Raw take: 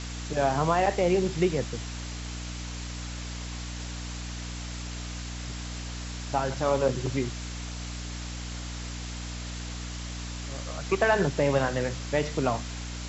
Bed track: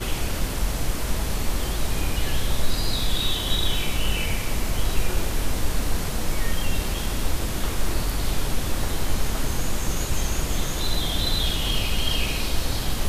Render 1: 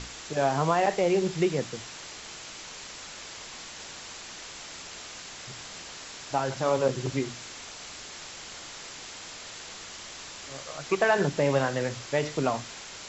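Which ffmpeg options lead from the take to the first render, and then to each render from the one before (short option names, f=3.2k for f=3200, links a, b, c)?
-af "bandreject=f=60:t=h:w=6,bandreject=f=120:t=h:w=6,bandreject=f=180:t=h:w=6,bandreject=f=240:t=h:w=6,bandreject=f=300:t=h:w=6"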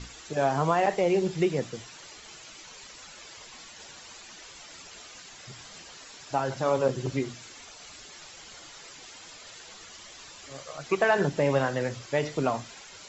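-af "afftdn=nr=10:nf=-43"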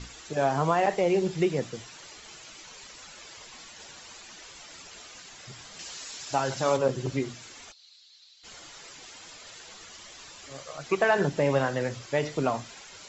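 -filter_complex "[0:a]asettb=1/sr,asplit=3[a][b][c];[a]atrim=end=5.794[d];[b]atrim=start=5.79:end=6.77,asetpts=PTS-STARTPTS,afade=t=in:d=0.004:c=qsin,afade=t=out:st=0.976:d=0.004:c=qsin,highshelf=f=2.8k:g=9.5[e];[c]atrim=start=6.766[f];[d][e]acrossfade=d=0.004:c1=hsin:c2=qsin[g];[g][f]acrossfade=d=0.004:c1=qsin:c2=hsin,asplit=3[h][i][j];[h]afade=t=out:st=7.71:d=0.02[k];[i]bandpass=f=4.1k:t=q:w=6.3,afade=t=in:st=7.71:d=0.02,afade=t=out:st=8.43:d=0.02[l];[j]afade=t=in:st=8.43:d=0.02[m];[k][l][m]amix=inputs=3:normalize=0"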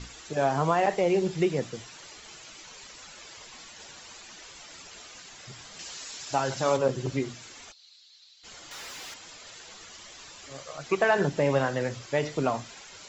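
-filter_complex "[0:a]asettb=1/sr,asplit=3[a][b][c];[a]atrim=end=8.714[d];[b]atrim=start=8.71:end=9.14,asetpts=PTS-STARTPTS,afade=t=in:d=0.004:c=qsin,afade=t=out:st=0.426:d=0.004:c=qsin,asplit=2[e][f];[f]highpass=f=720:p=1,volume=33dB,asoftclip=type=tanh:threshold=-34.5dB[g];[e][g]amix=inputs=2:normalize=0,lowpass=f=5.4k:p=1,volume=-6dB[h];[c]atrim=start=9.136[i];[d][h]acrossfade=d=0.004:c1=hsin:c2=qsin[j];[j][i]acrossfade=d=0.004:c1=qsin:c2=hsin"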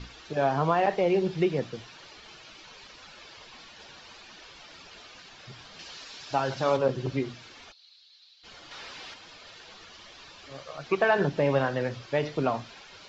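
-af "lowpass=f=4.9k:w=0.5412,lowpass=f=4.9k:w=1.3066,bandreject=f=2k:w=20"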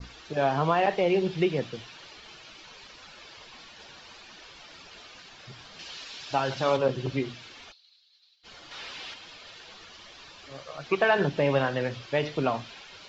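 -af "adynamicequalizer=threshold=0.00355:dfrequency=3000:dqfactor=1.4:tfrequency=3000:tqfactor=1.4:attack=5:release=100:ratio=0.375:range=2.5:mode=boostabove:tftype=bell,agate=range=-33dB:threshold=-50dB:ratio=3:detection=peak"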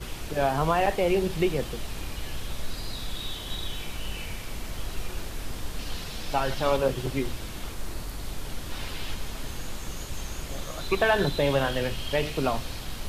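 -filter_complex "[1:a]volume=-10.5dB[a];[0:a][a]amix=inputs=2:normalize=0"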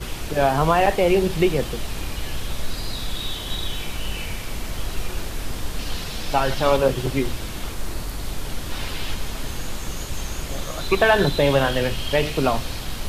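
-af "volume=6dB"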